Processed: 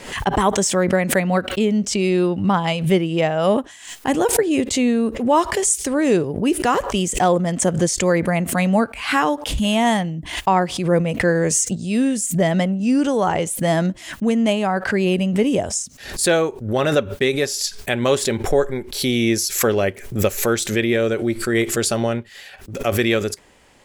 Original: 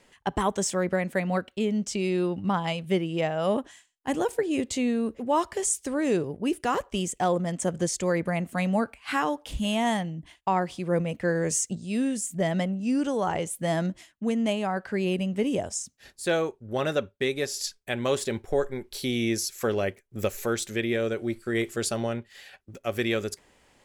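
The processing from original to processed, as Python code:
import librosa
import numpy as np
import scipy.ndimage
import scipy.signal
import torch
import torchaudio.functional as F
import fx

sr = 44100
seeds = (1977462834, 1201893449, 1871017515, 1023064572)

y = fx.pre_swell(x, sr, db_per_s=91.0)
y = y * librosa.db_to_amplitude(8.0)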